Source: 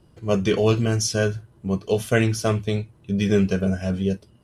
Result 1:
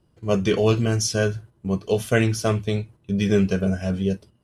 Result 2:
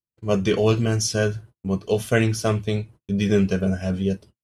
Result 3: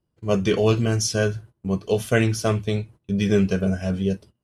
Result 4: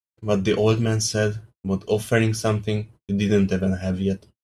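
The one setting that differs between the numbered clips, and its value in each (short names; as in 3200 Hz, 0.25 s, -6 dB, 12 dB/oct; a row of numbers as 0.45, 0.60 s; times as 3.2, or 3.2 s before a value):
gate, range: -8, -45, -21, -60 dB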